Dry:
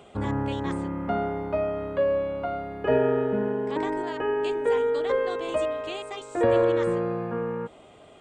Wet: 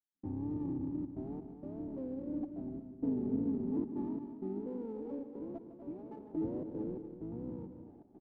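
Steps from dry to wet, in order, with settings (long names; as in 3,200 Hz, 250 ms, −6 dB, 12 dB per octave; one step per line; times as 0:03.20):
sub-octave generator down 1 octave, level 0 dB
low-shelf EQ 440 Hz +7 dB
downward compressor 2 to 1, threshold −39 dBFS, peak gain reduction 14.5 dB
0:02.25–0:04.60: parametric band 240 Hz +10.5 dB 0.38 octaves
tape wow and flutter 140 cents
gate pattern "..xxxxxxx.xx" 129 BPM −60 dB
formant resonators in series u
loudspeakers that aren't time-aligned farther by 53 metres −11 dB, 84 metres −10 dB
windowed peak hold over 5 samples
level +1.5 dB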